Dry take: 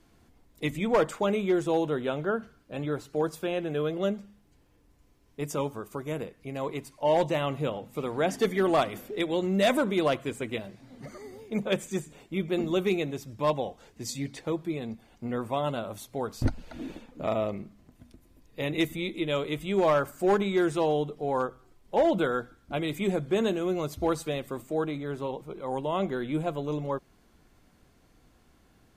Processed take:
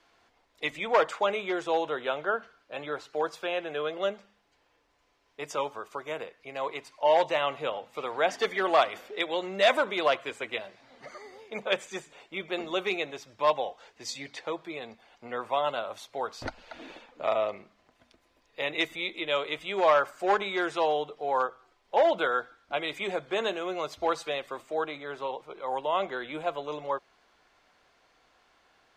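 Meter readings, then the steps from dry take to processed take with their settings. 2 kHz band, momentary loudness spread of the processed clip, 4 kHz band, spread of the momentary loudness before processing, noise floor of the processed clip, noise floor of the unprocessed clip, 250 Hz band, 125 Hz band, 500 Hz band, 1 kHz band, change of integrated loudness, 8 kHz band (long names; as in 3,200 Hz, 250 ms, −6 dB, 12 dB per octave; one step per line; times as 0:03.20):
+4.5 dB, 15 LU, +3.5 dB, 12 LU, −69 dBFS, −62 dBFS, −10.0 dB, −16.5 dB, −1.0 dB, +3.5 dB, −0.5 dB, −4.0 dB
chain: three-way crossover with the lows and the highs turned down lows −22 dB, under 510 Hz, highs −19 dB, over 5,900 Hz
level +4.5 dB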